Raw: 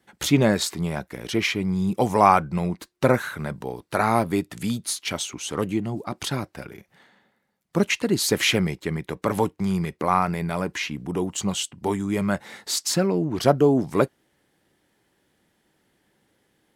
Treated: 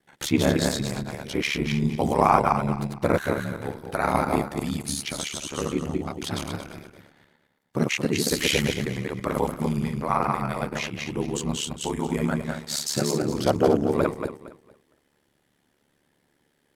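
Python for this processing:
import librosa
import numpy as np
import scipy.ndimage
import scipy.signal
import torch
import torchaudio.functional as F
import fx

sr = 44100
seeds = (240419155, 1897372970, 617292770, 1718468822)

y = fx.reverse_delay_fb(x, sr, ms=115, feedback_pct=50, wet_db=-1.5)
y = y * np.sin(2.0 * np.pi * 36.0 * np.arange(len(y)) / sr)
y = y * librosa.db_to_amplitude(-1.5)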